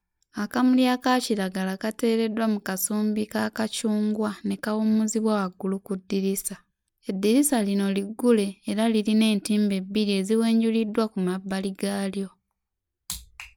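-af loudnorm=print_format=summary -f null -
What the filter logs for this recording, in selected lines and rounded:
Input Integrated:    -25.2 LUFS
Input True Peak:      -9.2 dBTP
Input LRA:             5.8 LU
Input Threshold:     -35.5 LUFS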